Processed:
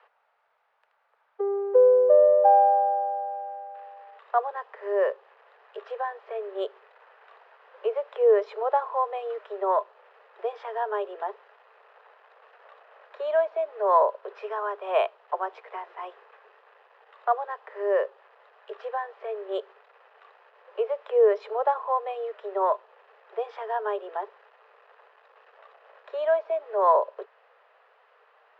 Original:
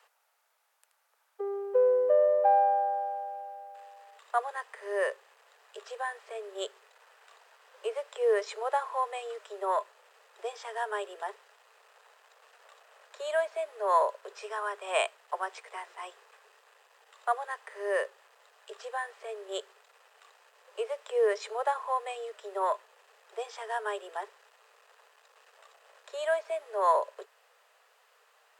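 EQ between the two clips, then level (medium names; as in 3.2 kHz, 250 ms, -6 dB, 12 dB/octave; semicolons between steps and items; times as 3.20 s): dynamic bell 1.9 kHz, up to -7 dB, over -48 dBFS, Q 1.3; distance through air 320 m; treble shelf 4 kHz -11.5 dB; +8.0 dB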